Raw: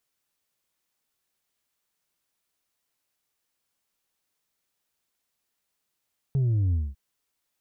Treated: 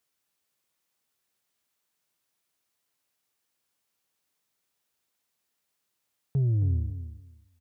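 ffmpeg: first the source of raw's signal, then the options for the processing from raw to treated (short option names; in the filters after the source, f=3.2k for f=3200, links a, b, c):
-f lavfi -i "aevalsrc='0.0891*clip((0.6-t)/0.22,0,1)*tanh(1.41*sin(2*PI*140*0.6/log(65/140)*(exp(log(65/140)*t/0.6)-1)))/tanh(1.41)':d=0.6:s=44100"
-af "highpass=68,aecho=1:1:272|544|816:0.282|0.0535|0.0102"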